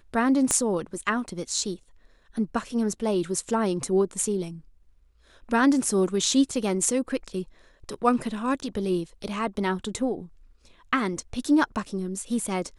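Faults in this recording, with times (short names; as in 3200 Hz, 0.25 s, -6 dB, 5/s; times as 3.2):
0.51 pop -9 dBFS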